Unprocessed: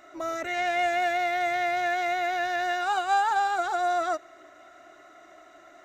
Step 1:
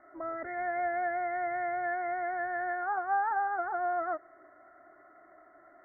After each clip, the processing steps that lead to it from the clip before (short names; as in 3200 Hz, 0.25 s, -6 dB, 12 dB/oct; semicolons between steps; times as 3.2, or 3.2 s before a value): steep low-pass 2000 Hz 96 dB/oct; gain -5.5 dB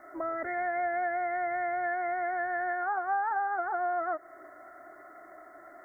tone controls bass -3 dB, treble +13 dB; compressor 2:1, threshold -40 dBFS, peak gain reduction 8.5 dB; gain +7 dB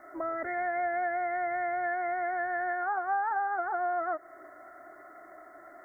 nothing audible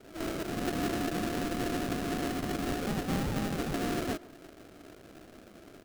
sample-rate reducer 1000 Hz, jitter 20%; speakerphone echo 0.14 s, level -16 dB; gain -1.5 dB